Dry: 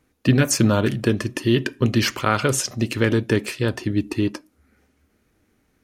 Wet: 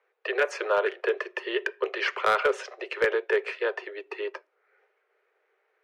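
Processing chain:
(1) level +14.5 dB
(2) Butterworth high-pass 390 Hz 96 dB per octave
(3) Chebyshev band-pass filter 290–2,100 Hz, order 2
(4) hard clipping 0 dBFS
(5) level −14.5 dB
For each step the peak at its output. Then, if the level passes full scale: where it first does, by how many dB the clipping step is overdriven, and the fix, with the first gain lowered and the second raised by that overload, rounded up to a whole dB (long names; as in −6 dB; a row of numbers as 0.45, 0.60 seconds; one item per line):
+11.0, +8.0, +8.0, 0.0, −14.5 dBFS
step 1, 8.0 dB
step 1 +6.5 dB, step 5 −6.5 dB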